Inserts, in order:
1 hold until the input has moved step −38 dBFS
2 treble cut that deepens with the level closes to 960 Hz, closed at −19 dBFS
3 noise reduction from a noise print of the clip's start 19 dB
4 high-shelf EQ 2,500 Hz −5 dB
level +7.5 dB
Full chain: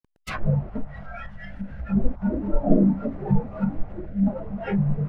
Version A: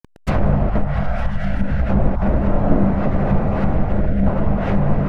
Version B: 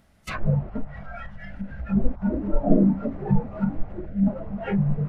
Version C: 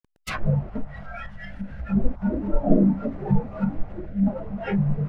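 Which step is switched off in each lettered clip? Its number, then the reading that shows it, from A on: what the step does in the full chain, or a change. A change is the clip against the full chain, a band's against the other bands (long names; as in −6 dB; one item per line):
3, 250 Hz band −4.5 dB
1, distortion level −23 dB
4, 2 kHz band +1.5 dB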